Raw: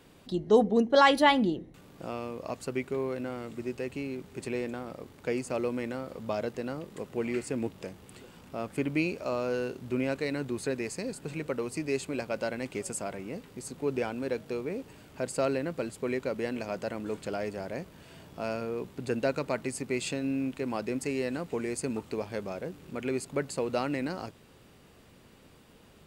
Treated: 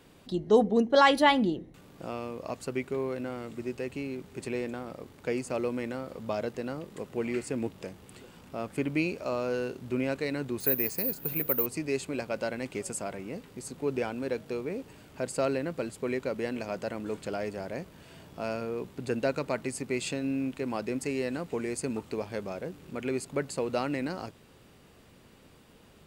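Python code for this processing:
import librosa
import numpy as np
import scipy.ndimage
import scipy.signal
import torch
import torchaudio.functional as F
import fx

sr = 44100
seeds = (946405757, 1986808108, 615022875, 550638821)

y = fx.resample_bad(x, sr, factor=3, down='filtered', up='zero_stuff', at=(10.6, 11.66))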